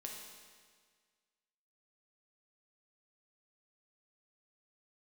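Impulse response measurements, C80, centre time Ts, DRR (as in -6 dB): 4.0 dB, 68 ms, -1.0 dB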